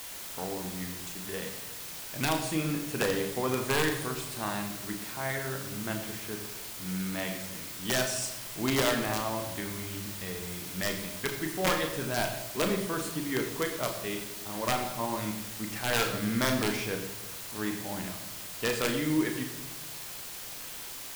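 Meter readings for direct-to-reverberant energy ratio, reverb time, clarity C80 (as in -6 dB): 3.5 dB, 1.0 s, 9.0 dB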